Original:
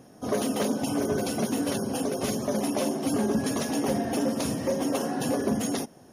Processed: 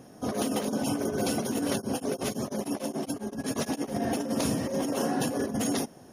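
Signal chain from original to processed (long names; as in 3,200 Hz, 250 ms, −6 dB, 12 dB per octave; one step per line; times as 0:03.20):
compressor whose output falls as the input rises −28 dBFS, ratio −0.5
0:01.71–0:03.93: tremolo along a rectified sine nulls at 5.2 Hz → 9.9 Hz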